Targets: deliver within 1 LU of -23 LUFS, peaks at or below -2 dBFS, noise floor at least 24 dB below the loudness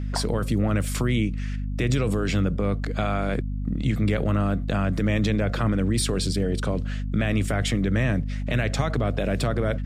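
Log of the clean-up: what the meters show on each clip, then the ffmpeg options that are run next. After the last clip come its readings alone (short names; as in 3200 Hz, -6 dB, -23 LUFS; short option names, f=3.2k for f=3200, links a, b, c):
hum 50 Hz; harmonics up to 250 Hz; hum level -26 dBFS; loudness -25.0 LUFS; peak -10.0 dBFS; loudness target -23.0 LUFS
-> -af "bandreject=f=50:t=h:w=4,bandreject=f=100:t=h:w=4,bandreject=f=150:t=h:w=4,bandreject=f=200:t=h:w=4,bandreject=f=250:t=h:w=4"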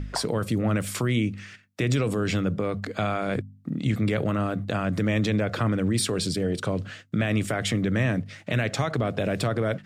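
hum none; loudness -26.5 LUFS; peak -11.5 dBFS; loudness target -23.0 LUFS
-> -af "volume=3.5dB"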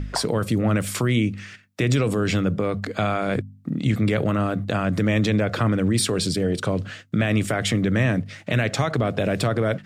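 loudness -23.0 LUFS; peak -8.0 dBFS; noise floor -47 dBFS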